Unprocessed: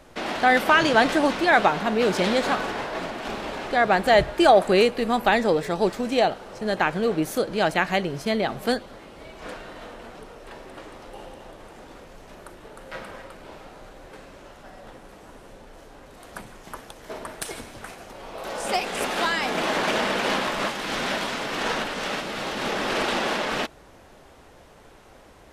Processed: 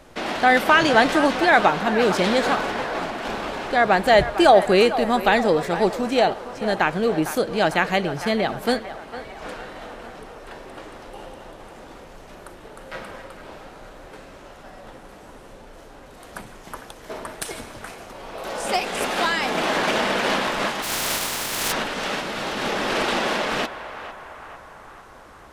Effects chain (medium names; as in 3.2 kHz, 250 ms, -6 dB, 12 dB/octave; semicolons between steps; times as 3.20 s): 20.82–21.71 s: spectral contrast reduction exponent 0.23; band-passed feedback delay 454 ms, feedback 66%, band-pass 1.1 kHz, level -10.5 dB; trim +2 dB